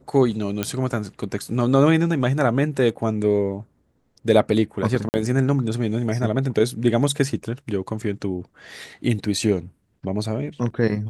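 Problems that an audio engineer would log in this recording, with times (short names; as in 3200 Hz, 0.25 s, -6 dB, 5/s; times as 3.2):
0.63 pop -8 dBFS
5.09–5.14 gap 49 ms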